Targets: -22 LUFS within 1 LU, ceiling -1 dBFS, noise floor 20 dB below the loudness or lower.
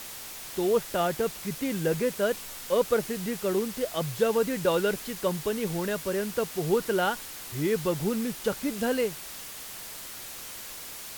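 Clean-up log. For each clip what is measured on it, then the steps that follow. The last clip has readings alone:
noise floor -41 dBFS; noise floor target -49 dBFS; loudness -29.0 LUFS; peak level -12.0 dBFS; loudness target -22.0 LUFS
-> noise reduction 8 dB, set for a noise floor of -41 dBFS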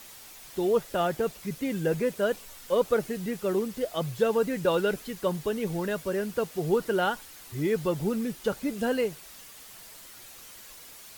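noise floor -48 dBFS; noise floor target -49 dBFS
-> noise reduction 6 dB, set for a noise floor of -48 dBFS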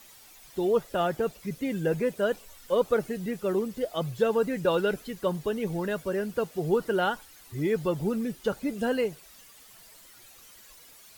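noise floor -53 dBFS; loudness -29.0 LUFS; peak level -12.0 dBFS; loudness target -22.0 LUFS
-> trim +7 dB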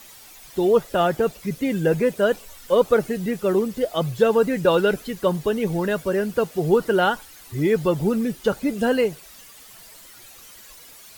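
loudness -22.0 LUFS; peak level -5.0 dBFS; noise floor -46 dBFS

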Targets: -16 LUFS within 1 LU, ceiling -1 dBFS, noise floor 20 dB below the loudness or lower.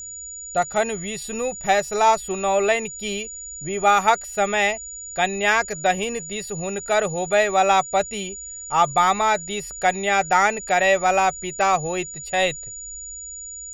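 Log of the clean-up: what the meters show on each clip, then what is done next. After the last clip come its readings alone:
steady tone 6.9 kHz; tone level -33 dBFS; loudness -21.5 LUFS; peak level -4.0 dBFS; loudness target -16.0 LUFS
-> band-stop 6.9 kHz, Q 30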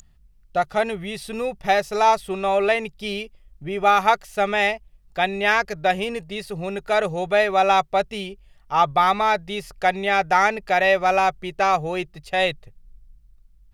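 steady tone not found; loudness -21.5 LUFS; peak level -4.5 dBFS; loudness target -16.0 LUFS
-> trim +5.5 dB; peak limiter -1 dBFS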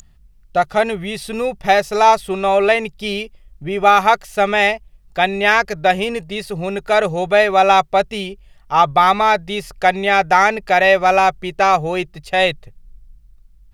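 loudness -16.0 LUFS; peak level -1.0 dBFS; noise floor -49 dBFS

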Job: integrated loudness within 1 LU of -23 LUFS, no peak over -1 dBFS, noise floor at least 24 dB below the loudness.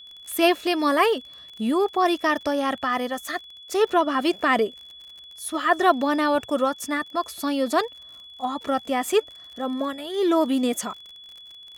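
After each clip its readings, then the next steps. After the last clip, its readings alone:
tick rate 40 per s; steady tone 3.4 kHz; tone level -42 dBFS; loudness -24.0 LUFS; peak level -5.0 dBFS; loudness target -23.0 LUFS
-> de-click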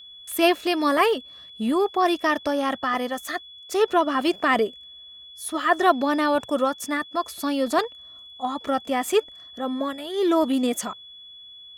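tick rate 1.3 per s; steady tone 3.4 kHz; tone level -42 dBFS
-> band-stop 3.4 kHz, Q 30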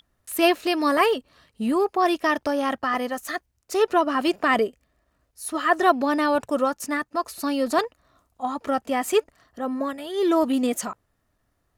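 steady tone not found; loudness -24.0 LUFS; peak level -5.0 dBFS; loudness target -23.0 LUFS
-> trim +1 dB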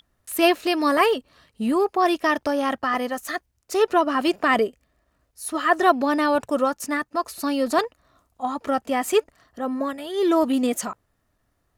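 loudness -23.0 LUFS; peak level -4.0 dBFS; noise floor -71 dBFS

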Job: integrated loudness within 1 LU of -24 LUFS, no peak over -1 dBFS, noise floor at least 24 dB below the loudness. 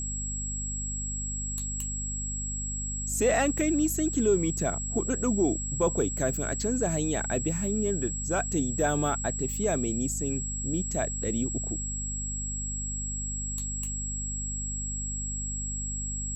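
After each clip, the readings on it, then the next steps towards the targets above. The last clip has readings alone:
hum 50 Hz; highest harmonic 250 Hz; hum level -33 dBFS; steady tone 7.7 kHz; tone level -33 dBFS; loudness -29.0 LUFS; peak level -13.5 dBFS; loudness target -24.0 LUFS
-> hum notches 50/100/150/200/250 Hz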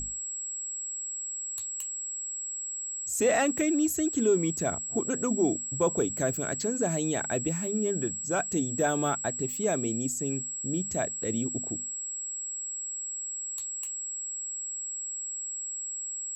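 hum not found; steady tone 7.7 kHz; tone level -33 dBFS
-> band-stop 7.7 kHz, Q 30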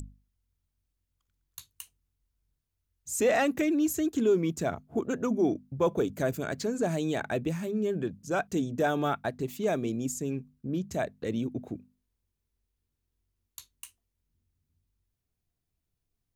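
steady tone not found; loudness -30.0 LUFS; peak level -15.5 dBFS; loudness target -24.0 LUFS
-> trim +6 dB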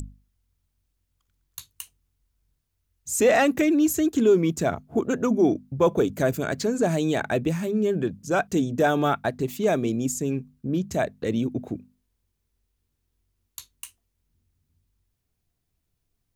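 loudness -24.0 LUFS; peak level -9.5 dBFS; noise floor -77 dBFS

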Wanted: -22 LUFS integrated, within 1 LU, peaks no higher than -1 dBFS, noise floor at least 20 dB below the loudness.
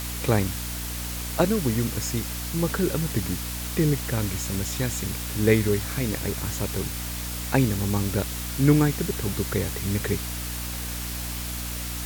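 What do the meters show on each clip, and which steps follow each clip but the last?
hum 60 Hz; highest harmonic 300 Hz; hum level -31 dBFS; noise floor -32 dBFS; noise floor target -46 dBFS; loudness -26.0 LUFS; peak level -6.0 dBFS; loudness target -22.0 LUFS
-> hum notches 60/120/180/240/300 Hz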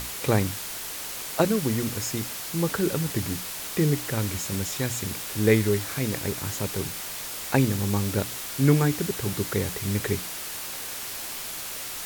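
hum not found; noise floor -35 dBFS; noise floor target -47 dBFS
-> noise print and reduce 12 dB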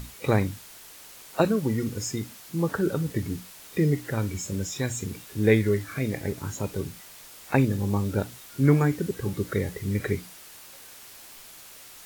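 noise floor -47 dBFS; loudness -27.0 LUFS; peak level -7.5 dBFS; loudness target -22.0 LUFS
-> trim +5 dB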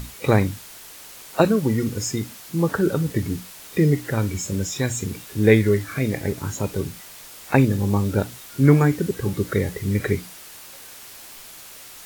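loudness -22.0 LUFS; peak level -2.5 dBFS; noise floor -42 dBFS

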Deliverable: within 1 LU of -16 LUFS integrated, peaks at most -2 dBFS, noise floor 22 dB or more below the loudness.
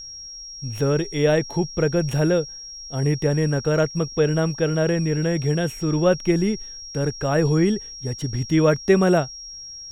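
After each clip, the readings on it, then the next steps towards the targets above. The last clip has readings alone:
steady tone 5.6 kHz; tone level -35 dBFS; loudness -21.5 LUFS; peak level -5.0 dBFS; loudness target -16.0 LUFS
-> band-stop 5.6 kHz, Q 30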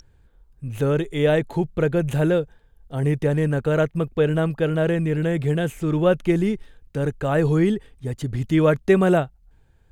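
steady tone not found; loudness -21.5 LUFS; peak level -5.0 dBFS; loudness target -16.0 LUFS
-> trim +5.5 dB; peak limiter -2 dBFS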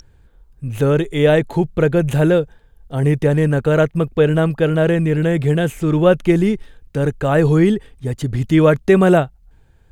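loudness -16.5 LUFS; peak level -2.0 dBFS; noise floor -52 dBFS

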